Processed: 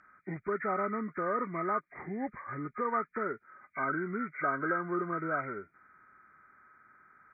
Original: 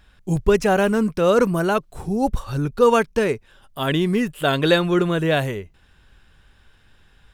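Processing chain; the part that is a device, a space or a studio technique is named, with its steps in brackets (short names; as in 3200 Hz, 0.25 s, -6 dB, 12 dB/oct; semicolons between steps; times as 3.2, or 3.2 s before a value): hearing aid with frequency lowering (nonlinear frequency compression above 1200 Hz 4:1; compressor 2:1, threshold -29 dBFS, peak gain reduction 10 dB; speaker cabinet 260–6500 Hz, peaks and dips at 490 Hz -8 dB, 820 Hz -5 dB, 1200 Hz +6 dB, 3800 Hz -10 dB); gain -4.5 dB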